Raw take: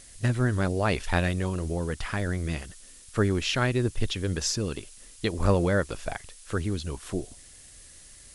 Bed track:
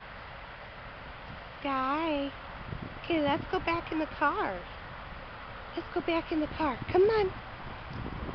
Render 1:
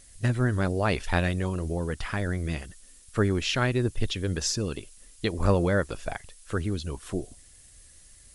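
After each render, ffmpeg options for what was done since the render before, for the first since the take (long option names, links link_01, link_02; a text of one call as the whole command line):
ffmpeg -i in.wav -af "afftdn=noise_reduction=6:noise_floor=-50" out.wav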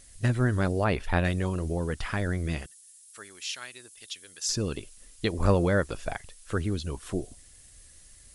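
ffmpeg -i in.wav -filter_complex "[0:a]asettb=1/sr,asplit=3[link_01][link_02][link_03];[link_01]atrim=end=0.844[link_04];[link_02]atrim=start=0.84:end=1.25,asetpts=PTS-STARTPTS,afade=type=in:duration=0.004:curve=qsin,afade=type=out:start_time=0.406:duration=0.004:curve=qsin,equalizer=frequency=6700:width_type=o:width=1.9:gain=-9[link_05];[link_03]atrim=start=1.246[link_06];[link_04][link_05]acrossfade=duration=0.004:curve1=hsin:curve2=qsin[link_07];[link_07][link_06]acrossfade=duration=0.004:curve1=qsin:curve2=hsin,asettb=1/sr,asplit=3[link_08][link_09][link_10];[link_08]atrim=end=2.664[link_11];[link_09]atrim=start=2.66:end=4.49,asetpts=PTS-STARTPTS,afade=type=in:duration=0.004:curve=qsin,afade=type=out:start_time=1.826:duration=0.004:curve=qsin,aderivative[link_12];[link_10]atrim=start=4.486[link_13];[link_11][link_12]acrossfade=duration=0.004:curve1=hsin:curve2=qsin[link_14];[link_14][link_13]acrossfade=duration=0.004:curve1=qsin:curve2=hsin" out.wav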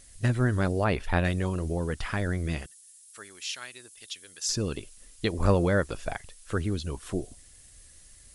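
ffmpeg -i in.wav -af anull out.wav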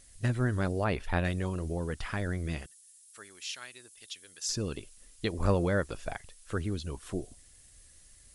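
ffmpeg -i in.wav -af "volume=-4dB" out.wav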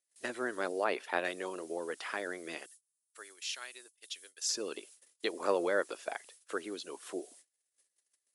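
ffmpeg -i in.wav -af "agate=range=-28dB:threshold=-52dB:ratio=16:detection=peak,highpass=frequency=340:width=0.5412,highpass=frequency=340:width=1.3066" out.wav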